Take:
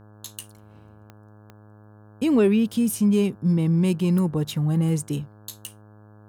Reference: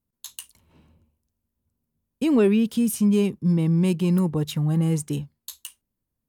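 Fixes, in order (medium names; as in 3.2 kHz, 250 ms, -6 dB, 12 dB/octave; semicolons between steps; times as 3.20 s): de-click; de-hum 105.6 Hz, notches 16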